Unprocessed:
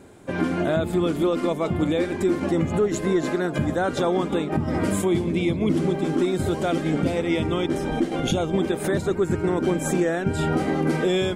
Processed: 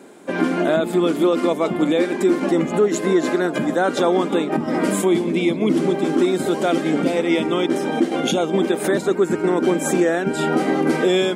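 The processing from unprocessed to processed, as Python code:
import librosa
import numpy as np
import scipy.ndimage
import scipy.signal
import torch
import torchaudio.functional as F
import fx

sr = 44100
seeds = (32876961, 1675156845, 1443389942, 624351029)

y = scipy.signal.sosfilt(scipy.signal.butter(4, 200.0, 'highpass', fs=sr, output='sos'), x)
y = y * librosa.db_to_amplitude(5.0)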